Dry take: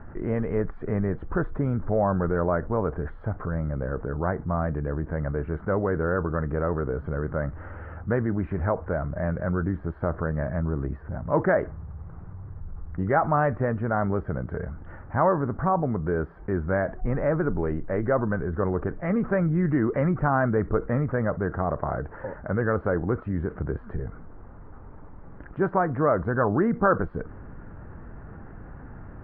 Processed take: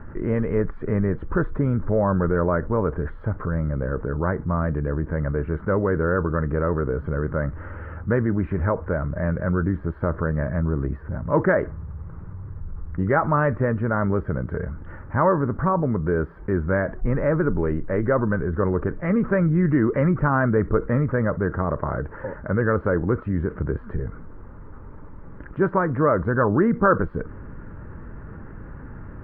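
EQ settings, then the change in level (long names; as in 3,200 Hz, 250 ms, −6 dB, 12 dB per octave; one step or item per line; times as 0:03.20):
parametric band 730 Hz −13 dB 0.23 octaves
+4.0 dB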